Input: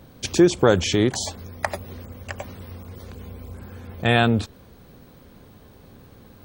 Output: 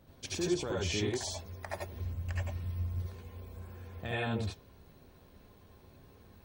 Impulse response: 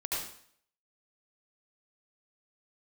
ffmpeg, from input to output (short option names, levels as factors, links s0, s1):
-filter_complex "[0:a]alimiter=limit=0.237:level=0:latency=1:release=65,flanger=delay=1.5:depth=5.8:regen=87:speed=0.75:shape=sinusoidal,asplit=3[s0][s1][s2];[s0]afade=t=out:st=1.92:d=0.02[s3];[s1]asubboost=boost=6:cutoff=190,afade=t=in:st=1.92:d=0.02,afade=t=out:st=3:d=0.02[s4];[s2]afade=t=in:st=3:d=0.02[s5];[s3][s4][s5]amix=inputs=3:normalize=0[s6];[1:a]atrim=start_sample=2205,atrim=end_sample=3969[s7];[s6][s7]afir=irnorm=-1:irlink=0,volume=0.473"